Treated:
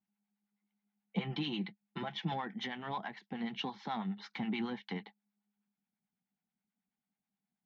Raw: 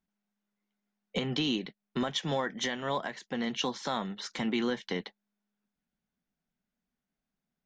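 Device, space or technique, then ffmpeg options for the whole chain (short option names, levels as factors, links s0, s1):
guitar amplifier with harmonic tremolo: -filter_complex "[0:a]acrossover=split=700[s0][s1];[s0]aeval=exprs='val(0)*(1-0.7/2+0.7/2*cos(2*PI*9.3*n/s))':c=same[s2];[s1]aeval=exprs='val(0)*(1-0.7/2-0.7/2*cos(2*PI*9.3*n/s))':c=same[s3];[s2][s3]amix=inputs=2:normalize=0,asoftclip=type=tanh:threshold=0.0596,highpass=89,equalizer=f=110:t=q:w=4:g=5,equalizer=f=200:t=q:w=4:g=10,equalizer=f=550:t=q:w=4:g=-9,equalizer=f=810:t=q:w=4:g=10,equalizer=f=2200:t=q:w=4:g=5,lowpass=f=4200:w=0.5412,lowpass=f=4200:w=1.3066,asettb=1/sr,asplit=3[s4][s5][s6];[s4]atrim=end=1.164[s7];[s5]atrim=start=1.16:end=2.34,asetpts=PTS-STARTPTS,afade=t=in:d=0.004:c=qsin,afade=t=out:st=1.176:d=0.004:c=qsin,aecho=1:1:5.9:0.63,atrim=end_sample=52038[s8];[s6]atrim=start=2.336[s9];[s7][s8]acrossfade=d=0.004:c1=hsin:c2=qsin[s10];[s10][s9]acrossfade=d=0.004:c1=qsin:c2=hsin,volume=0.562"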